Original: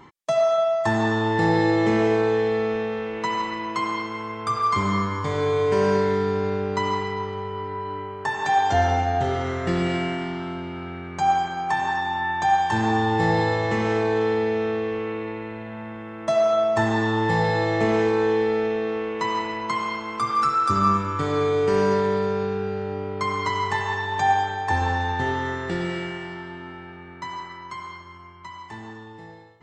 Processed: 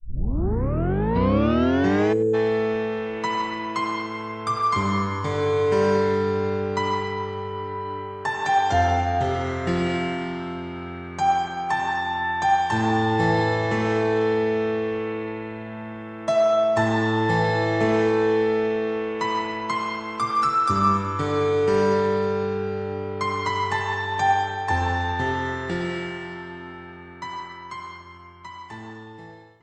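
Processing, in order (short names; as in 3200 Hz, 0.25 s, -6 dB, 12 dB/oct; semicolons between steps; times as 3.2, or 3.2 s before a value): tape start at the beginning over 2.16 s; spectral gain 2.13–2.34, 540–6500 Hz -30 dB; echo 0.1 s -20 dB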